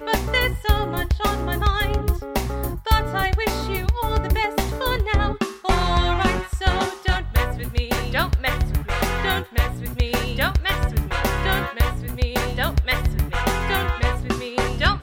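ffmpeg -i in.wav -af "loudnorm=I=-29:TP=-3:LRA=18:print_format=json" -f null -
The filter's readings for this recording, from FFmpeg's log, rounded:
"input_i" : "-22.6",
"input_tp" : "-3.7",
"input_lra" : "0.7",
"input_thresh" : "-32.6",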